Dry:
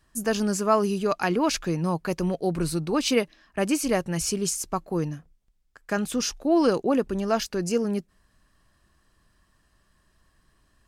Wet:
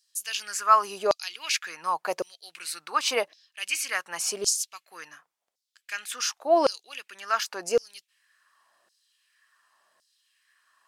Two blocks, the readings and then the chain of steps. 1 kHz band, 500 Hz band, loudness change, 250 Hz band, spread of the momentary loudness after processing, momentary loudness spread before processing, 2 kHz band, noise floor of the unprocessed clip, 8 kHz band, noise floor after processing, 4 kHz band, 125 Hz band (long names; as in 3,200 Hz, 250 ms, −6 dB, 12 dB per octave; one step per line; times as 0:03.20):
+3.0 dB, −3.5 dB, −1.5 dB, −17.5 dB, 16 LU, 7 LU, +1.5 dB, −67 dBFS, +1.5 dB, −82 dBFS, +2.0 dB, below −25 dB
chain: auto-filter high-pass saw down 0.9 Hz 550–5,200 Hz